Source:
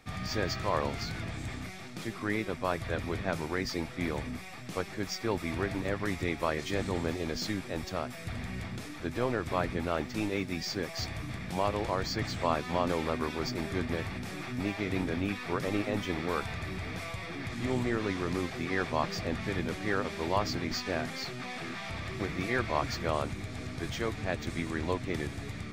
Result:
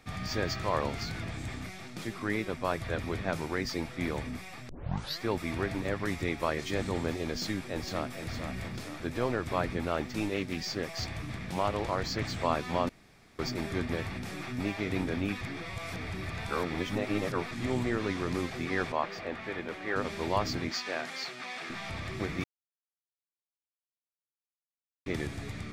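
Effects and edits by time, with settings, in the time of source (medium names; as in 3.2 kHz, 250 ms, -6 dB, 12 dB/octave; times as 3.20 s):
4.69 s: tape start 0.53 s
7.30–8.22 s: echo throw 460 ms, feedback 50%, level -7.5 dB
10.34–12.26 s: loudspeaker Doppler distortion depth 0.22 ms
12.89–13.39 s: room tone
15.41–17.51 s: reverse
18.92–19.96 s: tone controls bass -14 dB, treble -12 dB
20.70–21.70 s: frequency weighting A
22.44–25.06 s: mute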